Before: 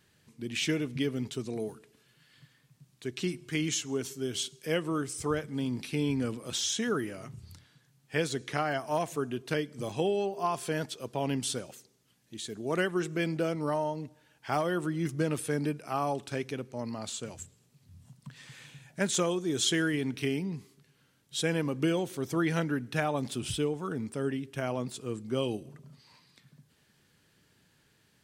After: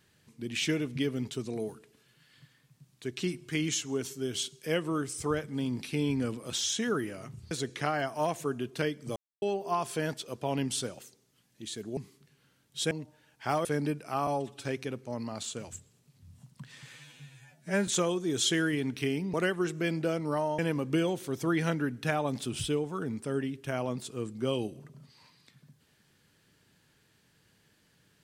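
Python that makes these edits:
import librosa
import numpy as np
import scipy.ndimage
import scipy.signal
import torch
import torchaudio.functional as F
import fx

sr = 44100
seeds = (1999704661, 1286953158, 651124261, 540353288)

y = fx.edit(x, sr, fx.cut(start_s=7.51, length_s=0.72),
    fx.silence(start_s=9.88, length_s=0.26),
    fx.swap(start_s=12.69, length_s=1.25, other_s=20.54, other_length_s=0.94),
    fx.cut(start_s=14.68, length_s=0.76),
    fx.stretch_span(start_s=16.06, length_s=0.25, factor=1.5),
    fx.stretch_span(start_s=18.62, length_s=0.46, factor=2.0), tone=tone)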